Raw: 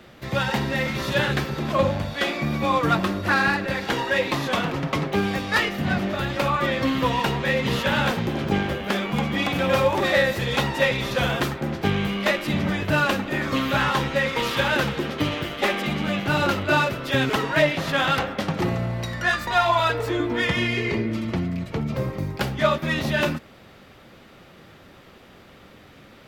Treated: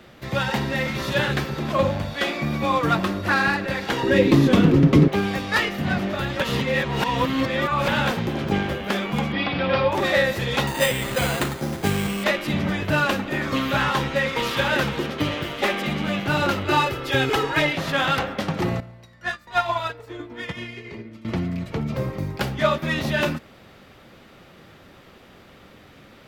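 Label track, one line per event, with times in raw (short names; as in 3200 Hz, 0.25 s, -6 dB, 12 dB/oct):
1.090000	3.030000	short-mantissa float mantissa of 6-bit
4.030000	5.080000	resonant low shelf 510 Hz +11.5 dB, Q 1.5
6.400000	7.880000	reverse
9.320000	9.920000	elliptic low-pass 4900 Hz
10.670000	12.240000	careless resampling rate divided by 8×, down none, up hold
14.100000	14.500000	echo throw 0.56 s, feedback 55%, level -11.5 dB
16.650000	17.730000	comb 2.4 ms, depth 64%
18.800000	21.250000	upward expander 2.5:1, over -30 dBFS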